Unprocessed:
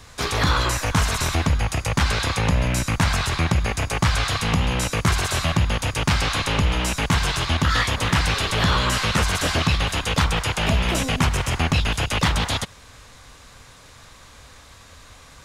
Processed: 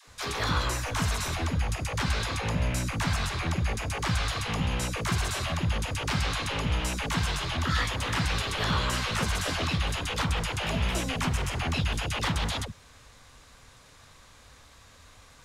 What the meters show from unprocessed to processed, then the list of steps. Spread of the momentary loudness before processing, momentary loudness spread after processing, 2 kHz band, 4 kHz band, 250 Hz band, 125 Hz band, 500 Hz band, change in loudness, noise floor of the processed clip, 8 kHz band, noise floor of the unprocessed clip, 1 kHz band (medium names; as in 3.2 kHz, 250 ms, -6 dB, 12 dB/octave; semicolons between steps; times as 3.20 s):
3 LU, 2 LU, -7.5 dB, -7.5 dB, -7.5 dB, -7.5 dB, -7.5 dB, -7.5 dB, -54 dBFS, -7.5 dB, -47 dBFS, -7.5 dB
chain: phase dispersion lows, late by 77 ms, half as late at 400 Hz; trim -7.5 dB